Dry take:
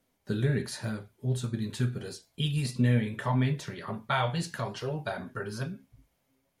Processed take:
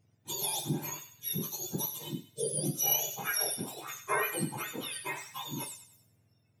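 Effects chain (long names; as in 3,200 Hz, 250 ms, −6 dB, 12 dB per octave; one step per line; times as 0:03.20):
frequency axis turned over on the octave scale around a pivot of 1,200 Hz
delay with a high-pass on its return 98 ms, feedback 38%, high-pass 1,500 Hz, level −10 dB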